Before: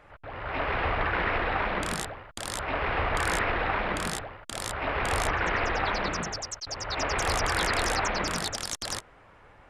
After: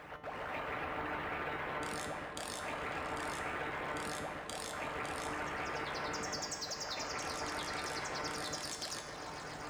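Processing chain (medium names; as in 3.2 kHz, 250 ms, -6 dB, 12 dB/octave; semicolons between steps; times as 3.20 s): companding laws mixed up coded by mu; high-pass 79 Hz 12 dB/octave; harmonic-percussive split harmonic -15 dB; reverse; upward compressor, threshold -37 dBFS; reverse; peak limiter -22.5 dBFS, peak gain reduction 7 dB; compression, threshold -37 dBFS, peak gain reduction 8.5 dB; feedback comb 150 Hz, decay 0.7 s, harmonics all, mix 80%; on a send: delay with an opening low-pass 137 ms, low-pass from 750 Hz, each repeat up 1 oct, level -3 dB; on the sum: trim +9.5 dB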